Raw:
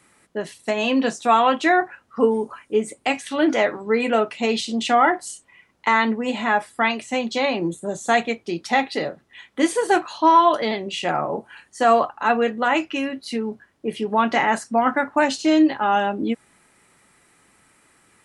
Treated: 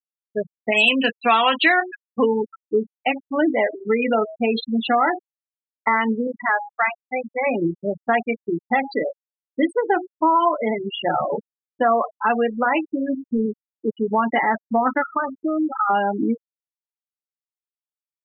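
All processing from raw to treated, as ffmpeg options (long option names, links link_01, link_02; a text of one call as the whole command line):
ffmpeg -i in.wav -filter_complex "[0:a]asettb=1/sr,asplit=3[link_01][link_02][link_03];[link_01]atrim=end=0.724[link_04];[link_02]atrim=start=0.72:end=2.37,asetpts=PTS-STARTPTS,afade=type=in:duration=0.004:curve=qsin,afade=type=out:start_time=1.646:duration=0.004:curve=qsin,equalizer=frequency=2700:width=0.89:gain=14,adynamicsmooth=sensitivity=5:basefreq=790[link_05];[link_03]atrim=start=2.366[link_06];[link_04][link_05]acrossfade=duration=0.004:curve1=hsin:curve2=qsin[link_07];[link_07][link_06]acrossfade=duration=0.004:curve1=qsin:curve2=hsin,asettb=1/sr,asplit=3[link_08][link_09][link_10];[link_08]atrim=end=6.274[link_11];[link_09]atrim=start=6.27:end=7.46,asetpts=PTS-STARTPTS,afade=type=in:duration=0.004:curve=qsin,afade=type=out:start_time=1.186:duration=0.004:curve=qsin,highpass=frequency=730:poles=1,highshelf=frequency=2500:width_type=q:width=1.5:gain=-8[link_12];[link_10]atrim=start=7.456[link_13];[link_11][link_12]acrossfade=duration=0.004:curve1=hsin:curve2=qsin[link_14];[link_14][link_13]acrossfade=duration=0.004:curve1=qsin:curve2=hsin,asettb=1/sr,asplit=3[link_15][link_16][link_17];[link_15]atrim=end=12.834[link_18];[link_16]atrim=start=12.83:end=13.46,asetpts=PTS-STARTPTS,afade=type=in:duration=0.004:curve=qsin,afade=type=out:start_time=0.626:duration=0.004:curve=qsin,lowshelf=frequency=170:gain=9.5,volume=18dB,asoftclip=hard,volume=-18dB,asuperstop=centerf=2800:order=4:qfactor=1.4[link_19];[link_17]atrim=start=13.456[link_20];[link_18][link_19]acrossfade=duration=0.004:curve1=hsin:curve2=qsin[link_21];[link_21][link_20]acrossfade=duration=0.004:curve1=qsin:curve2=hsin,asettb=1/sr,asplit=3[link_22][link_23][link_24];[link_22]atrim=end=15.024[link_25];[link_23]atrim=start=15.02:end=15.9,asetpts=PTS-STARTPTS,afade=type=in:duration=0.004:curve=qsin,afade=type=out:start_time=0.876:duration=0.004:curve=qsin,lowpass=frequency=1300:width_type=q:width=14,acompressor=threshold=-23dB:ratio=4:attack=3.2:release=140:knee=1:detection=peak[link_26];[link_24]atrim=start=15.896[link_27];[link_25][link_26]acrossfade=duration=0.004:curve1=hsin:curve2=qsin[link_28];[link_28][link_27]acrossfade=duration=0.004:curve1=qsin:curve2=hsin,bandreject=frequency=91.7:width_type=h:width=4,bandreject=frequency=183.4:width_type=h:width=4,bandreject=frequency=275.1:width_type=h:width=4,bandreject=frequency=366.8:width_type=h:width=4,bandreject=frequency=458.5:width_type=h:width=4,bandreject=frequency=550.2:width_type=h:width=4,bandreject=frequency=641.9:width_type=h:width=4,bandreject=frequency=733.6:width_type=h:width=4,bandreject=frequency=825.3:width_type=h:width=4,bandreject=frequency=917:width_type=h:width=4,bandreject=frequency=1008.7:width_type=h:width=4,afftfilt=real='re*gte(hypot(re,im),0.158)':imag='im*gte(hypot(re,im),0.158)':win_size=1024:overlap=0.75,acompressor=threshold=-21dB:ratio=2.5,volume=4dB" out.wav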